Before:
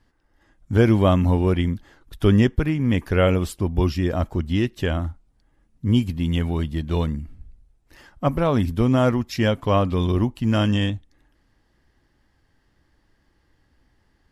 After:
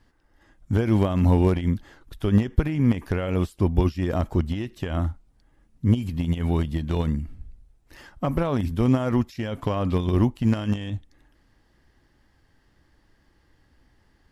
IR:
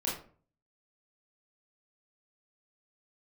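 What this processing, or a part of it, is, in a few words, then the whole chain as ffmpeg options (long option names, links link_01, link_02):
de-esser from a sidechain: -filter_complex "[0:a]asplit=2[link_01][link_02];[link_02]highpass=5000,apad=whole_len=631453[link_03];[link_01][link_03]sidechaincompress=threshold=-50dB:ratio=8:attack=1.9:release=58,volume=2dB"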